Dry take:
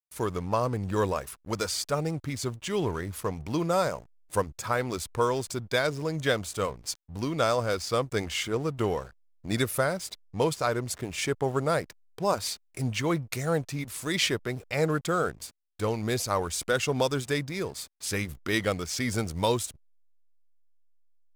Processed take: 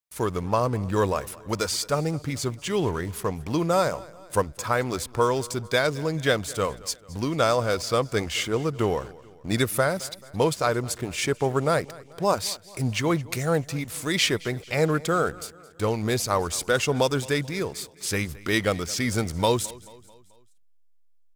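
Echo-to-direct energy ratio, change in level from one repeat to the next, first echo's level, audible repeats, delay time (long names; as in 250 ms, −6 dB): −20.0 dB, −6.0 dB, −21.0 dB, 3, 218 ms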